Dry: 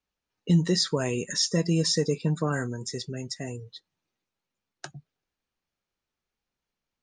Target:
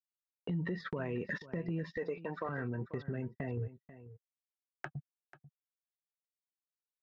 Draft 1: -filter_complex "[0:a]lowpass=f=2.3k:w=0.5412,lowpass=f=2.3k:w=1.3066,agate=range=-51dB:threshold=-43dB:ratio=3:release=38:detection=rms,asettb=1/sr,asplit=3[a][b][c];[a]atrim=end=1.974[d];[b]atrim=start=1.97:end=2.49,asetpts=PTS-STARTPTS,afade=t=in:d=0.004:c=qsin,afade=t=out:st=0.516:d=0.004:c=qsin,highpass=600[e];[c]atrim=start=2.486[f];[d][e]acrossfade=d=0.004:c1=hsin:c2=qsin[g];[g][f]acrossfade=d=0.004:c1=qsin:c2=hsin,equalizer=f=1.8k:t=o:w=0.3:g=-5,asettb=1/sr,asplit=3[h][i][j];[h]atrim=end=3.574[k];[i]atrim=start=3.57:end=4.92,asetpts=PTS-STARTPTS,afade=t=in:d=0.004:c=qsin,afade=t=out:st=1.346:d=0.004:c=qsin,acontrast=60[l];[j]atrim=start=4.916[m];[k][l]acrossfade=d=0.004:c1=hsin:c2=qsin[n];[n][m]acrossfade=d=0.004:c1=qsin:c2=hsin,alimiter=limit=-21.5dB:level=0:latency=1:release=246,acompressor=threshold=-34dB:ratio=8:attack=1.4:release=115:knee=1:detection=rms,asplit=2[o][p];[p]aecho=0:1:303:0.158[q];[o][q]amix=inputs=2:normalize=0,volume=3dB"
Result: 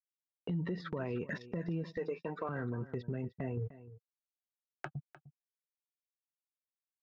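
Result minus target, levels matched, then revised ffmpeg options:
echo 0.187 s early; 2000 Hz band -3.0 dB
-filter_complex "[0:a]lowpass=f=2.3k:w=0.5412,lowpass=f=2.3k:w=1.3066,agate=range=-51dB:threshold=-43dB:ratio=3:release=38:detection=rms,asettb=1/sr,asplit=3[a][b][c];[a]atrim=end=1.974[d];[b]atrim=start=1.97:end=2.49,asetpts=PTS-STARTPTS,afade=t=in:d=0.004:c=qsin,afade=t=out:st=0.516:d=0.004:c=qsin,highpass=600[e];[c]atrim=start=2.486[f];[d][e]acrossfade=d=0.004:c1=hsin:c2=qsin[g];[g][f]acrossfade=d=0.004:c1=qsin:c2=hsin,equalizer=f=1.8k:t=o:w=0.3:g=2.5,asettb=1/sr,asplit=3[h][i][j];[h]atrim=end=3.574[k];[i]atrim=start=3.57:end=4.92,asetpts=PTS-STARTPTS,afade=t=in:d=0.004:c=qsin,afade=t=out:st=1.346:d=0.004:c=qsin,acontrast=60[l];[j]atrim=start=4.916[m];[k][l]acrossfade=d=0.004:c1=hsin:c2=qsin[n];[n][m]acrossfade=d=0.004:c1=qsin:c2=hsin,alimiter=limit=-21.5dB:level=0:latency=1:release=246,acompressor=threshold=-34dB:ratio=8:attack=1.4:release=115:knee=1:detection=rms,asplit=2[o][p];[p]aecho=0:1:490:0.158[q];[o][q]amix=inputs=2:normalize=0,volume=3dB"

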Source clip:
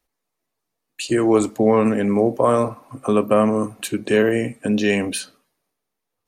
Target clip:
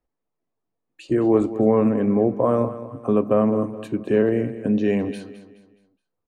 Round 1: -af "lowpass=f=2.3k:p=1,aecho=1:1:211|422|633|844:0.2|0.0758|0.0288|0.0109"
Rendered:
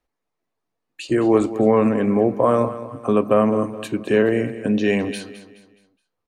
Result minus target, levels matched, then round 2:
2000 Hz band +6.5 dB
-af "lowpass=f=590:p=1,aecho=1:1:211|422|633|844:0.2|0.0758|0.0288|0.0109"

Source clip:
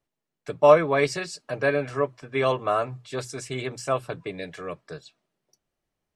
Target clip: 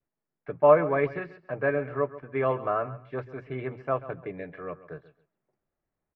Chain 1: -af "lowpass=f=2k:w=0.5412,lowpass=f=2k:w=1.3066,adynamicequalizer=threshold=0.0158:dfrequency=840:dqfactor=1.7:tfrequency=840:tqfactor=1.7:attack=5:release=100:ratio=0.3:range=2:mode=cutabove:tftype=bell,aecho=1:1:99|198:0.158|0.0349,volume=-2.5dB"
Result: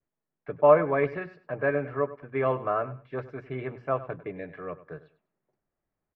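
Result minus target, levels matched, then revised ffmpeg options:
echo 37 ms early
-af "lowpass=f=2k:w=0.5412,lowpass=f=2k:w=1.3066,adynamicequalizer=threshold=0.0158:dfrequency=840:dqfactor=1.7:tfrequency=840:tqfactor=1.7:attack=5:release=100:ratio=0.3:range=2:mode=cutabove:tftype=bell,aecho=1:1:136|272:0.158|0.0349,volume=-2.5dB"

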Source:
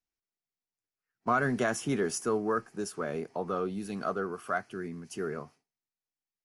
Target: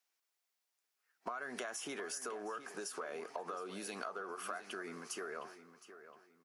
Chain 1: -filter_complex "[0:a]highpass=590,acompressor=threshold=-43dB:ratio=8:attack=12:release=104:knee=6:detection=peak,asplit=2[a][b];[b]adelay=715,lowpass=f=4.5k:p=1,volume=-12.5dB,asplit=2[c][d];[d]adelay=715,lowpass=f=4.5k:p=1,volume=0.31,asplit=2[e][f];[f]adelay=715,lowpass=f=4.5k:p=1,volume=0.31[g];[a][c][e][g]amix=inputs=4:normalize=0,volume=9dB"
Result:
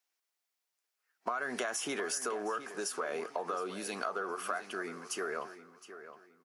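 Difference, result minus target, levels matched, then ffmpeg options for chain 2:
compressor: peak gain reduction -7.5 dB
-filter_complex "[0:a]highpass=590,acompressor=threshold=-51.5dB:ratio=8:attack=12:release=104:knee=6:detection=peak,asplit=2[a][b];[b]adelay=715,lowpass=f=4.5k:p=1,volume=-12.5dB,asplit=2[c][d];[d]adelay=715,lowpass=f=4.5k:p=1,volume=0.31,asplit=2[e][f];[f]adelay=715,lowpass=f=4.5k:p=1,volume=0.31[g];[a][c][e][g]amix=inputs=4:normalize=0,volume=9dB"

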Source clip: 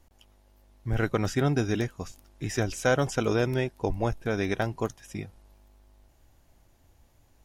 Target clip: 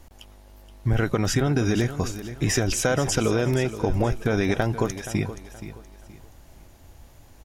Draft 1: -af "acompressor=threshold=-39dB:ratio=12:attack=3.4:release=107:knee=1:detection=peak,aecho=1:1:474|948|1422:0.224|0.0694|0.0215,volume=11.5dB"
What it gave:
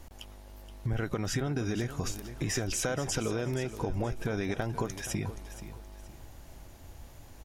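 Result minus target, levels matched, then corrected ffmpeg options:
compressor: peak gain reduction +9.5 dB
-af "acompressor=threshold=-28.5dB:ratio=12:attack=3.4:release=107:knee=1:detection=peak,aecho=1:1:474|948|1422:0.224|0.0694|0.0215,volume=11.5dB"

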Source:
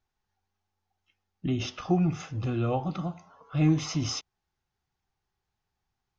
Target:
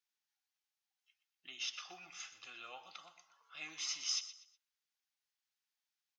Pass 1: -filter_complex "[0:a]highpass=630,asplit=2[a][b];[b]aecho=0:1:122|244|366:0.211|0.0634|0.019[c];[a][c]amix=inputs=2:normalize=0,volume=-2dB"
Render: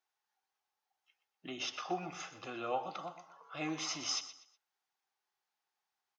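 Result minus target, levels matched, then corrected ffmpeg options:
500 Hz band +18.0 dB
-filter_complex "[0:a]highpass=2.3k,asplit=2[a][b];[b]aecho=0:1:122|244|366:0.211|0.0634|0.019[c];[a][c]amix=inputs=2:normalize=0,volume=-2dB"

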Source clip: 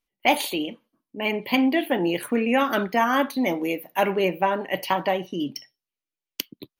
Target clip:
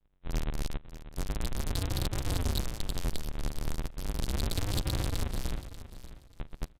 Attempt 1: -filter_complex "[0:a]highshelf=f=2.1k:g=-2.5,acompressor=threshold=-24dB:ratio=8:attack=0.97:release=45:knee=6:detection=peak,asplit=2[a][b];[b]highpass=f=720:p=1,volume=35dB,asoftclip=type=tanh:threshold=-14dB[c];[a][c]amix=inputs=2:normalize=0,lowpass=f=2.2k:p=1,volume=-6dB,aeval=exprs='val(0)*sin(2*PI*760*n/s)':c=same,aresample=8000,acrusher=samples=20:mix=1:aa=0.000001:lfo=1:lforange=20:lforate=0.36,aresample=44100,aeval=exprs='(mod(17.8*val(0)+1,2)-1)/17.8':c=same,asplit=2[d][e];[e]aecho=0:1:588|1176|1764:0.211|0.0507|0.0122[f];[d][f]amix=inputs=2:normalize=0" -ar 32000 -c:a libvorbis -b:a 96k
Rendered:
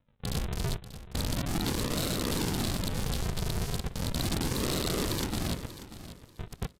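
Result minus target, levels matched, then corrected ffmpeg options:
compressor: peak gain reduction -5.5 dB; decimation with a swept rate: distortion -8 dB
-filter_complex "[0:a]highshelf=f=2.1k:g=-2.5,acompressor=threshold=-30.5dB:ratio=8:attack=0.97:release=45:knee=6:detection=peak,asplit=2[a][b];[b]highpass=f=720:p=1,volume=35dB,asoftclip=type=tanh:threshold=-14dB[c];[a][c]amix=inputs=2:normalize=0,lowpass=f=2.2k:p=1,volume=-6dB,aeval=exprs='val(0)*sin(2*PI*760*n/s)':c=same,aresample=8000,acrusher=samples=73:mix=1:aa=0.000001:lfo=1:lforange=73:lforate=0.36,aresample=44100,aeval=exprs='(mod(17.8*val(0)+1,2)-1)/17.8':c=same,asplit=2[d][e];[e]aecho=0:1:588|1176|1764:0.211|0.0507|0.0122[f];[d][f]amix=inputs=2:normalize=0" -ar 32000 -c:a libvorbis -b:a 96k

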